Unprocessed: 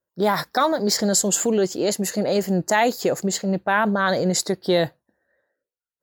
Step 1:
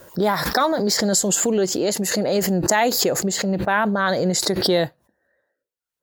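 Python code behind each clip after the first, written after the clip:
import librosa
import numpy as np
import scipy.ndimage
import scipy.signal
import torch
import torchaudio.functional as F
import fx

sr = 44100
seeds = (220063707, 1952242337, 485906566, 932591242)

y = fx.pre_swell(x, sr, db_per_s=38.0)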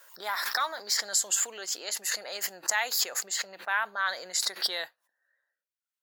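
y = scipy.signal.sosfilt(scipy.signal.cheby1(2, 1.0, 1400.0, 'highpass', fs=sr, output='sos'), x)
y = F.gain(torch.from_numpy(y), -5.0).numpy()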